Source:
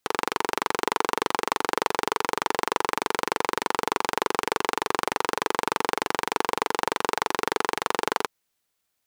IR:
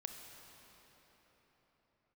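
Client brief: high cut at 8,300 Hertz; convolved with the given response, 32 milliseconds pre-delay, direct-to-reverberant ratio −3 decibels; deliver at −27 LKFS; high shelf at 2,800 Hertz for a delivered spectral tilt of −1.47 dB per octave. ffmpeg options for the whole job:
-filter_complex "[0:a]lowpass=8300,highshelf=frequency=2800:gain=7,asplit=2[link_01][link_02];[1:a]atrim=start_sample=2205,adelay=32[link_03];[link_02][link_03]afir=irnorm=-1:irlink=0,volume=6dB[link_04];[link_01][link_04]amix=inputs=2:normalize=0,volume=-6.5dB"

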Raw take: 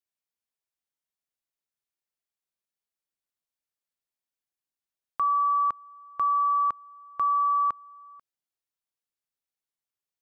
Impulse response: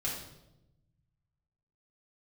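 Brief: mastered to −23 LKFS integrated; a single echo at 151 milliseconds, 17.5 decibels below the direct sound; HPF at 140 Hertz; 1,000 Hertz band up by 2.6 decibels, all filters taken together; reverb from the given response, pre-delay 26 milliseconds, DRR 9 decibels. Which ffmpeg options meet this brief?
-filter_complex "[0:a]highpass=140,equalizer=frequency=1000:width_type=o:gain=3,aecho=1:1:151:0.133,asplit=2[link_01][link_02];[1:a]atrim=start_sample=2205,adelay=26[link_03];[link_02][link_03]afir=irnorm=-1:irlink=0,volume=-12.5dB[link_04];[link_01][link_04]amix=inputs=2:normalize=0"

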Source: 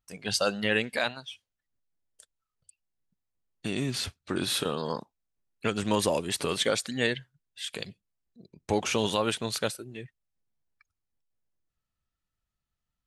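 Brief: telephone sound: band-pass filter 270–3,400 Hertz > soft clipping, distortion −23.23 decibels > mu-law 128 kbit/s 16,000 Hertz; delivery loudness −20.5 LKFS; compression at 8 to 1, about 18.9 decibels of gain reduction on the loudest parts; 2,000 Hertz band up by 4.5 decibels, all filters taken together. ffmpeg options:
ffmpeg -i in.wav -af "equalizer=frequency=2000:width_type=o:gain=6.5,acompressor=threshold=-39dB:ratio=8,highpass=270,lowpass=3400,asoftclip=threshold=-28.5dB,volume=25.5dB" -ar 16000 -c:a pcm_mulaw out.wav

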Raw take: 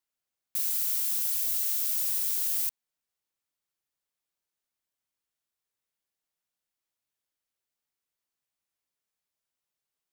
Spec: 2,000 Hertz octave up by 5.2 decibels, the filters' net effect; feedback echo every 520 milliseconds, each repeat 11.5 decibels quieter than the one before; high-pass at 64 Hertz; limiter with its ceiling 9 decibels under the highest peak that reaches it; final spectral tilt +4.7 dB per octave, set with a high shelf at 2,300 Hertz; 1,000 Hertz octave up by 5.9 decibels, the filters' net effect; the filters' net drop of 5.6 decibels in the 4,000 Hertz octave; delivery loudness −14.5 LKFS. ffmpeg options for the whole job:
ffmpeg -i in.wav -af "highpass=64,equalizer=frequency=1000:width_type=o:gain=5.5,equalizer=frequency=2000:width_type=o:gain=9,highshelf=frequency=2300:gain=-3.5,equalizer=frequency=4000:width_type=o:gain=-6.5,alimiter=level_in=3dB:limit=-24dB:level=0:latency=1,volume=-3dB,aecho=1:1:520|1040|1560:0.266|0.0718|0.0194,volume=20dB" out.wav

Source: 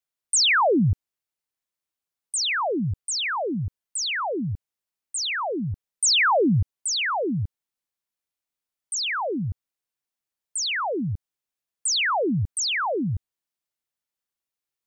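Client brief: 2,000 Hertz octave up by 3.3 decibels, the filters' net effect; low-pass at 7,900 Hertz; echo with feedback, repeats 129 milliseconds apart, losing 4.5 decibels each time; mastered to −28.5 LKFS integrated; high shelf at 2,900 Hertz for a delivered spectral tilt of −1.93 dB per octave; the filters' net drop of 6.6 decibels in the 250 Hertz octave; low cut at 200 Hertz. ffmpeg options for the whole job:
ffmpeg -i in.wav -af "highpass=200,lowpass=7900,equalizer=frequency=250:width_type=o:gain=-6.5,equalizer=frequency=2000:width_type=o:gain=5.5,highshelf=frequency=2900:gain=-3.5,aecho=1:1:129|258|387|516|645|774|903|1032|1161:0.596|0.357|0.214|0.129|0.0772|0.0463|0.0278|0.0167|0.01,volume=-6dB" out.wav

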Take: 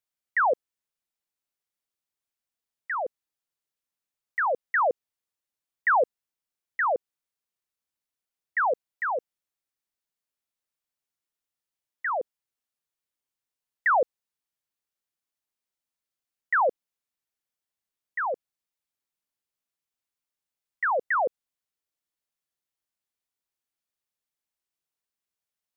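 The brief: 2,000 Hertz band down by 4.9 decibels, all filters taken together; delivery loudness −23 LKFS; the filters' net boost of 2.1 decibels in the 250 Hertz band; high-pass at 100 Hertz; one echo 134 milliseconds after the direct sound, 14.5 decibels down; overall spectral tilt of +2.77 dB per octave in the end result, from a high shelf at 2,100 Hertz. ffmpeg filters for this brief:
ffmpeg -i in.wav -af "highpass=100,equalizer=frequency=250:width_type=o:gain=3.5,equalizer=frequency=2000:width_type=o:gain=-4,highshelf=frequency=2100:gain=-5,aecho=1:1:134:0.188,volume=6dB" out.wav

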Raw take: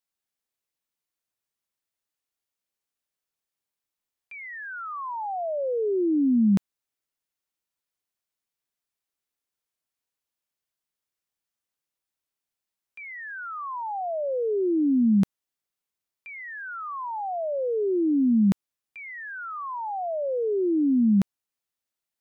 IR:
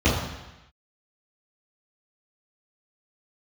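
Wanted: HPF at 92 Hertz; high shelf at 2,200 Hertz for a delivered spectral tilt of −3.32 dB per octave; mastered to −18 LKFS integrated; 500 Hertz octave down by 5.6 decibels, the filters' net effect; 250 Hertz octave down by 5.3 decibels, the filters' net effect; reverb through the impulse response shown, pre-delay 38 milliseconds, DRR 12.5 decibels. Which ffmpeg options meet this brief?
-filter_complex "[0:a]highpass=92,equalizer=frequency=250:width_type=o:gain=-5,equalizer=frequency=500:width_type=o:gain=-6,highshelf=frequency=2200:gain=7,asplit=2[link_01][link_02];[1:a]atrim=start_sample=2205,adelay=38[link_03];[link_02][link_03]afir=irnorm=-1:irlink=0,volume=-30.5dB[link_04];[link_01][link_04]amix=inputs=2:normalize=0,volume=12dB"

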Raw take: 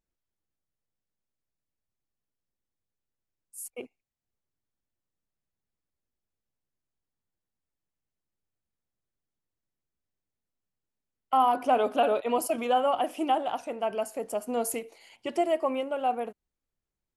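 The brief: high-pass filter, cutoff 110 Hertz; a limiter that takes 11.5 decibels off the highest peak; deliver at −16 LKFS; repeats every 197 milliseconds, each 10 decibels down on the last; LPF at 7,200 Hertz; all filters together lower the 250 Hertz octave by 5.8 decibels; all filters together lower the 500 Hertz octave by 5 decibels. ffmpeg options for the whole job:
ffmpeg -i in.wav -af "highpass=110,lowpass=7200,equalizer=frequency=250:width_type=o:gain=-5,equalizer=frequency=500:width_type=o:gain=-5.5,alimiter=level_in=2dB:limit=-24dB:level=0:latency=1,volume=-2dB,aecho=1:1:197|394|591|788:0.316|0.101|0.0324|0.0104,volume=20.5dB" out.wav

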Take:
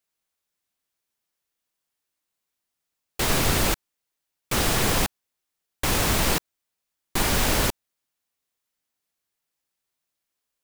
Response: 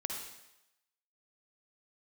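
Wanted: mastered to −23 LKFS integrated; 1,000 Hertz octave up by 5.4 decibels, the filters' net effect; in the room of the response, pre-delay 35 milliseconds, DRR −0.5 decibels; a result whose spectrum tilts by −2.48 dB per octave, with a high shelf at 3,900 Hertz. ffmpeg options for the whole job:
-filter_complex "[0:a]equalizer=frequency=1000:width_type=o:gain=6.5,highshelf=frequency=3900:gain=4,asplit=2[link_01][link_02];[1:a]atrim=start_sample=2205,adelay=35[link_03];[link_02][link_03]afir=irnorm=-1:irlink=0,volume=-1dB[link_04];[link_01][link_04]amix=inputs=2:normalize=0,volume=-5dB"

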